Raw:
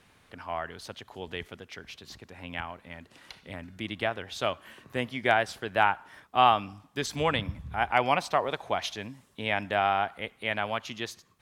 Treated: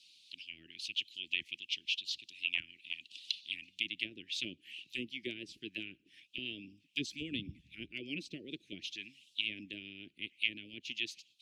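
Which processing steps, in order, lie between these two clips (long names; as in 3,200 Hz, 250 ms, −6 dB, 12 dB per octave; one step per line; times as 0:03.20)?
envelope filter 700–4,400 Hz, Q 2.8, down, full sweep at −26.5 dBFS
harmonic and percussive parts rebalanced harmonic −11 dB
Chebyshev band-stop filter 330–2,600 Hz, order 4
level +15.5 dB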